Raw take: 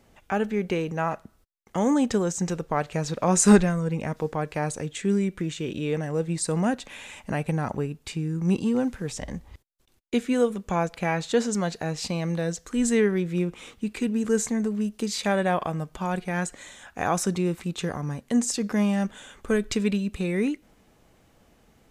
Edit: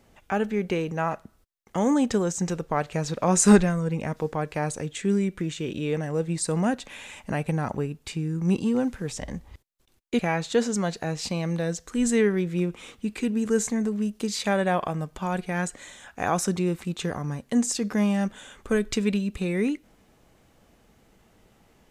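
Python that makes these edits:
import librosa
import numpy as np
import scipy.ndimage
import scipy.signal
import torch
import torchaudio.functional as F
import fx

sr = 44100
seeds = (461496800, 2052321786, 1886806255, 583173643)

y = fx.edit(x, sr, fx.cut(start_s=10.19, length_s=0.79), tone=tone)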